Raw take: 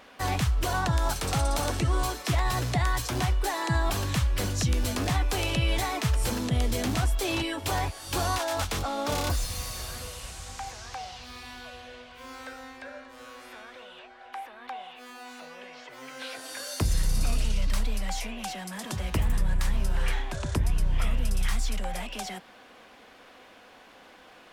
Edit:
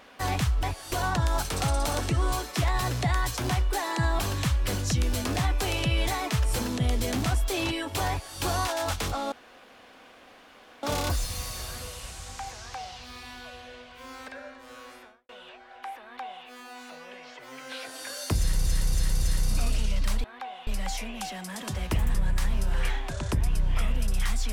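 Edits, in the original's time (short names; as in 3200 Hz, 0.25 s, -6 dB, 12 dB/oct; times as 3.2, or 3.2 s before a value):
7.8–8.09 copy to 0.63
9.03 insert room tone 1.51 s
12.48–12.78 cut
13.39–13.79 studio fade out
14.52–14.95 copy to 17.9
16.88–17.16 loop, 4 plays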